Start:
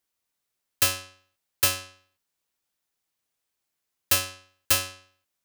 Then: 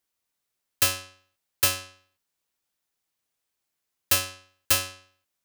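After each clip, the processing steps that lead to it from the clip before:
no processing that can be heard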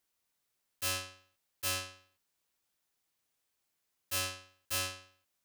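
volume swells 151 ms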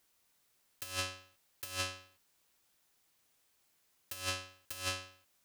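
compressor whose output falls as the input rises −40 dBFS, ratio −0.5
level +2.5 dB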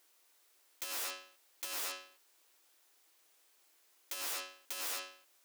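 wrap-around overflow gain 37.5 dB
linear-phase brick-wall high-pass 280 Hz
level +4.5 dB

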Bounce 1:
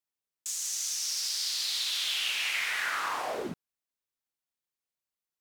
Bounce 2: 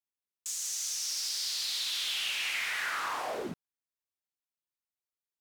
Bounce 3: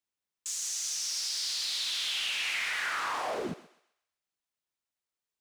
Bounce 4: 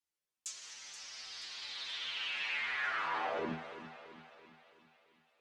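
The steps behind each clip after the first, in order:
leveller curve on the samples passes 1; level −5 dB
parametric band 15,000 Hz −12.5 dB 0.45 octaves; feedback echo with a high-pass in the loop 129 ms, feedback 38%, high-pass 670 Hz, level −14 dB; in parallel at +1.5 dB: brickwall limiter −32 dBFS, peak gain reduction 8 dB; on the sum: level −3 dB
stiff-string resonator 79 Hz, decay 0.29 s, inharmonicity 0.002; treble cut that deepens with the level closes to 2,500 Hz, closed at −39 dBFS; echo with a time of its own for lows and highs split 2,400 Hz, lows 334 ms, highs 478 ms, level −12.5 dB; level +6 dB

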